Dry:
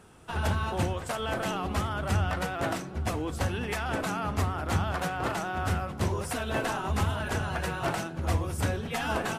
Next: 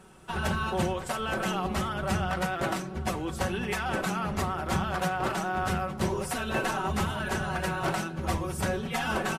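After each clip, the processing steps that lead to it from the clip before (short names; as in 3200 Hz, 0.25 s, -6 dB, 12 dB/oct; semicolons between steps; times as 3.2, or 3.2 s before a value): comb 5.3 ms, depth 58%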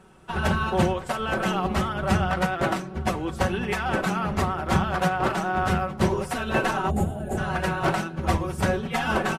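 spectral gain 6.9–7.38, 850–6500 Hz -17 dB; high shelf 4700 Hz -7.5 dB; upward expander 1.5:1, over -38 dBFS; gain +7.5 dB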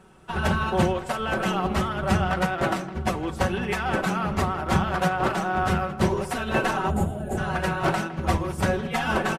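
speakerphone echo 0.16 s, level -14 dB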